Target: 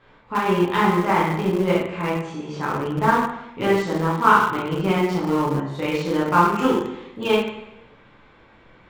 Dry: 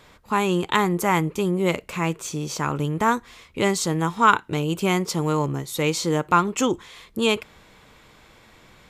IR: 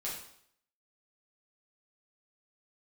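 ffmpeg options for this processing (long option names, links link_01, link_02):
-filter_complex "[0:a]lowpass=2400[link_01];[1:a]atrim=start_sample=2205,asetrate=31311,aresample=44100[link_02];[link_01][link_02]afir=irnorm=-1:irlink=0,asplit=2[link_03][link_04];[link_04]aeval=exprs='val(0)*gte(abs(val(0)),0.158)':channel_layout=same,volume=-11dB[link_05];[link_03][link_05]amix=inputs=2:normalize=0,volume=-3dB"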